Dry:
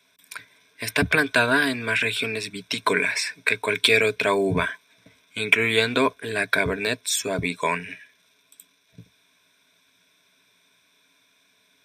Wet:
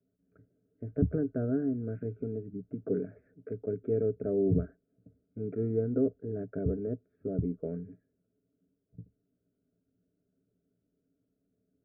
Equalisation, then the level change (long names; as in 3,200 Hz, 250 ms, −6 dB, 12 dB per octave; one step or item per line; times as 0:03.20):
Butterworth band-reject 1,000 Hz, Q 0.57
Chebyshev low-pass filter 1,300 Hz, order 6
low-shelf EQ 97 Hz +11 dB
−4.0 dB